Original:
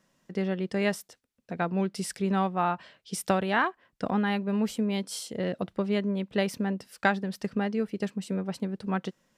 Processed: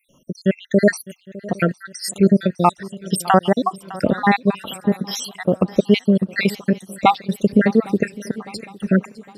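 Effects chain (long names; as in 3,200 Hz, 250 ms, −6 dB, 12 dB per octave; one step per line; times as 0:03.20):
time-frequency cells dropped at random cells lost 75%
feedback echo with a long and a short gap by turns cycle 809 ms, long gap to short 3 to 1, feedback 43%, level −19.5 dB
boost into a limiter +16.5 dB
level −1 dB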